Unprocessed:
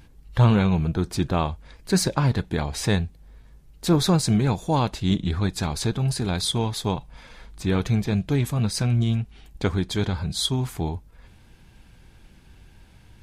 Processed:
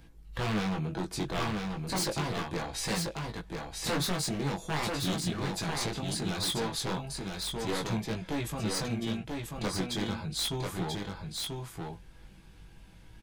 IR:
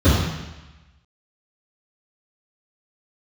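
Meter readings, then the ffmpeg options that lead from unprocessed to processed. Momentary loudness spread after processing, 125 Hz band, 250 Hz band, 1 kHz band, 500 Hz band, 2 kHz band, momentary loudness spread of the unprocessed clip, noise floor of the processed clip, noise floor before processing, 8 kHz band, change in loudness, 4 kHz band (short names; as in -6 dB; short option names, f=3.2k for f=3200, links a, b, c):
7 LU, -13.0 dB, -9.5 dB, -6.0 dB, -7.0 dB, -2.5 dB, 10 LU, -53 dBFS, -52 dBFS, -3.5 dB, -9.0 dB, -4.0 dB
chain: -filter_complex "[0:a]acrossover=split=220|2300[a][b][c];[a]acompressor=threshold=-33dB:ratio=5[d];[d][b][c]amix=inputs=3:normalize=0,aecho=1:1:6.1:0.32,aeval=exprs='0.0891*(abs(mod(val(0)/0.0891+3,4)-2)-1)':c=same,flanger=delay=17.5:depth=4.3:speed=0.37,aecho=1:1:988:0.631,volume=-1.5dB"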